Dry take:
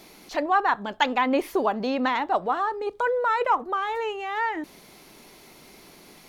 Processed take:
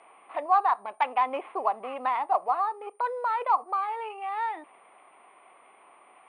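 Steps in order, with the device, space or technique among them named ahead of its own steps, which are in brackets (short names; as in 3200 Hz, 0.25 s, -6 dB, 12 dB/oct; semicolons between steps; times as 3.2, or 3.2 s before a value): toy sound module (decimation joined by straight lines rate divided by 8×; pulse-width modulation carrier 9100 Hz; speaker cabinet 620–3900 Hz, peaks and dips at 740 Hz +7 dB, 1100 Hz +8 dB, 1600 Hz -7 dB, 2400 Hz +4 dB, 3600 Hz -5 dB); gain -4.5 dB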